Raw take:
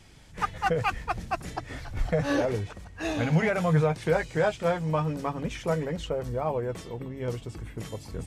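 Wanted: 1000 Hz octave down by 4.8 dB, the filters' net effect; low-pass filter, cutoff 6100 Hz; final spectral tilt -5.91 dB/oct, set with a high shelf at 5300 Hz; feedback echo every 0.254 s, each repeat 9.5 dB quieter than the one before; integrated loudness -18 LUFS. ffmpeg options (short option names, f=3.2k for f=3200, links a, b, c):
-af "lowpass=6.1k,equalizer=f=1k:t=o:g=-7,highshelf=f=5.3k:g=5.5,aecho=1:1:254|508|762|1016:0.335|0.111|0.0365|0.012,volume=12dB"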